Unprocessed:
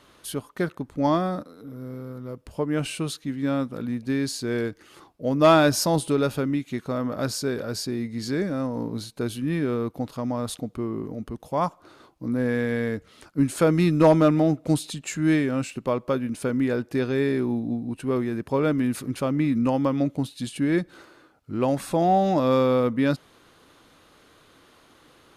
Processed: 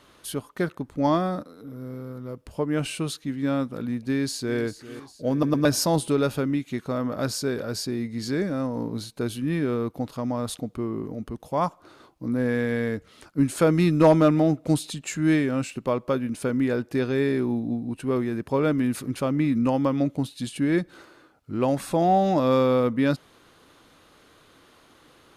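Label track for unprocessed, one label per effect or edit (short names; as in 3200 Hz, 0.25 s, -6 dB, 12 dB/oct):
4.070000	4.590000	echo throw 0.4 s, feedback 55%, level -14.5 dB
5.320000	5.320000	stutter in place 0.11 s, 3 plays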